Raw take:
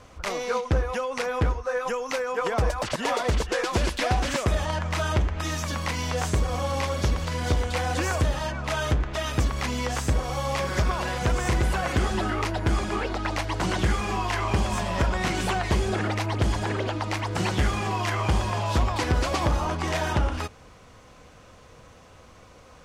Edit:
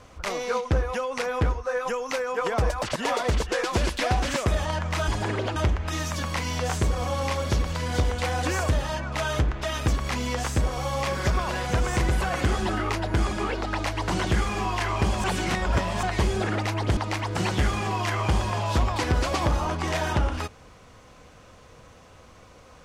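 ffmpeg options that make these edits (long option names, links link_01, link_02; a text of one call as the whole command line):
ffmpeg -i in.wav -filter_complex "[0:a]asplit=6[link_01][link_02][link_03][link_04][link_05][link_06];[link_01]atrim=end=5.082[link_07];[link_02]atrim=start=16.488:end=16.972[link_08];[link_03]atrim=start=5.078:end=14.762[link_09];[link_04]atrim=start=14.758:end=15.552,asetpts=PTS-STARTPTS,areverse[link_10];[link_05]atrim=start=15.548:end=16.492[link_11];[link_06]atrim=start=16.968[link_12];[link_07][link_08]acrossfade=duration=0.004:curve1=hsin:curve2=hsin[link_13];[link_13][link_09]acrossfade=duration=0.004:curve1=hsin:curve2=hsin[link_14];[link_14][link_10]acrossfade=duration=0.004:curve1=hsin:curve2=hsin[link_15];[link_15][link_11]acrossfade=duration=0.004:curve1=hsin:curve2=hsin[link_16];[link_16][link_12]acrossfade=duration=0.004:curve1=hsin:curve2=hsin" out.wav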